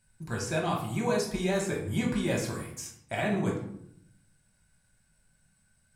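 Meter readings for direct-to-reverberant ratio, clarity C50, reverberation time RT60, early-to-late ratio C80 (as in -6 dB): -2.5 dB, 5.5 dB, 0.75 s, 9.5 dB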